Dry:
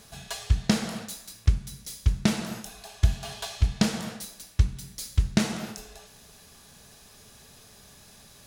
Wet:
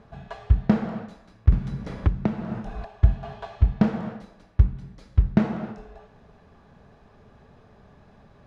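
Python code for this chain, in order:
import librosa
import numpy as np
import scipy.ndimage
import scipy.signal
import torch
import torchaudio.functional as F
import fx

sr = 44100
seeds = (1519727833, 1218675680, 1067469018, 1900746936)

y = scipy.signal.sosfilt(scipy.signal.butter(2, 1200.0, 'lowpass', fs=sr, output='sos'), x)
y = fx.band_squash(y, sr, depth_pct=100, at=(1.52, 2.85))
y = y * librosa.db_to_amplitude(4.0)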